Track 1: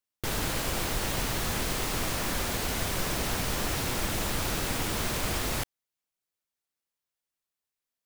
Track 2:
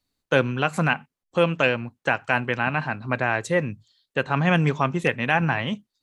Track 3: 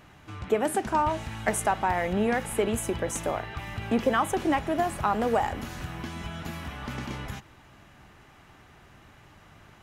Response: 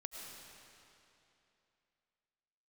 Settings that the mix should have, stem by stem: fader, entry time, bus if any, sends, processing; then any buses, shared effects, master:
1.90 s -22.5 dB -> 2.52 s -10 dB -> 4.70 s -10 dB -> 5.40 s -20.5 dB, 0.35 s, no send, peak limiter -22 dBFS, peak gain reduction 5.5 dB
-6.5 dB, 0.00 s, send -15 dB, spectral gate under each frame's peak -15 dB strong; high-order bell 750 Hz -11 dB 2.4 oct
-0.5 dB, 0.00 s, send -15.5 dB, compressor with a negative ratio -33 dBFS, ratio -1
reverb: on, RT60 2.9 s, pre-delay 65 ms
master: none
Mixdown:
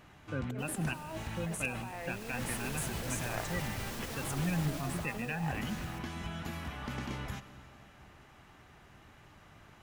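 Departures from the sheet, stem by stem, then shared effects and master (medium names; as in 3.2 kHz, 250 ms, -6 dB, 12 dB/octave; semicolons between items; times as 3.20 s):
stem 2 -6.5 dB -> -13.0 dB; stem 3 -0.5 dB -> -10.5 dB; reverb return +9.5 dB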